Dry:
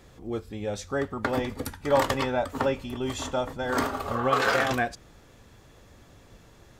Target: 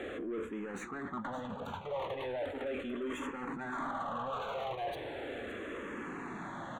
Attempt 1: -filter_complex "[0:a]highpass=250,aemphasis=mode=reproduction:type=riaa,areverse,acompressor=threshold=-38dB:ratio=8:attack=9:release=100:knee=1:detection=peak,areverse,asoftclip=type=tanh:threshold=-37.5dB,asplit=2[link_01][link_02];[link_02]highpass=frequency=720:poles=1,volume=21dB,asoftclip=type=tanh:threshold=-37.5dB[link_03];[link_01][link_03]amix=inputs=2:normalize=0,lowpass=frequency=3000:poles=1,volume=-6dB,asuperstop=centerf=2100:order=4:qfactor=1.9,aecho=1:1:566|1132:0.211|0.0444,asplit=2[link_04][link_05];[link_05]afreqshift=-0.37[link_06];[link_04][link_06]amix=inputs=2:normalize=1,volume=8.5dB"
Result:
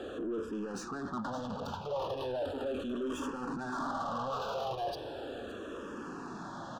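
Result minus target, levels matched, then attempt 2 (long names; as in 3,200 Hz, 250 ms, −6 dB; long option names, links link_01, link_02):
downward compressor: peak gain reduction −7.5 dB; 2,000 Hz band −4.5 dB
-filter_complex "[0:a]highpass=250,aemphasis=mode=reproduction:type=riaa,areverse,acompressor=threshold=-46.5dB:ratio=8:attack=9:release=100:knee=1:detection=peak,areverse,asoftclip=type=tanh:threshold=-37.5dB,asplit=2[link_01][link_02];[link_02]highpass=frequency=720:poles=1,volume=21dB,asoftclip=type=tanh:threshold=-37.5dB[link_03];[link_01][link_03]amix=inputs=2:normalize=0,lowpass=frequency=3000:poles=1,volume=-6dB,asuperstop=centerf=5100:order=4:qfactor=1.9,aecho=1:1:566|1132:0.211|0.0444,asplit=2[link_04][link_05];[link_05]afreqshift=-0.37[link_06];[link_04][link_06]amix=inputs=2:normalize=1,volume=8.5dB"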